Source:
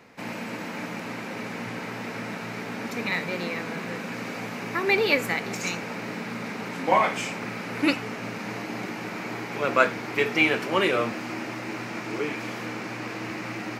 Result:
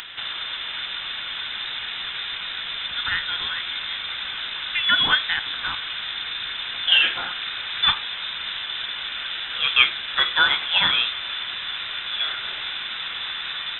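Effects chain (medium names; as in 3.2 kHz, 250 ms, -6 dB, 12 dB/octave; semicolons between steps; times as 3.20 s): upward compressor, threshold -30 dBFS; frequency inversion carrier 3.8 kHz; trim +3 dB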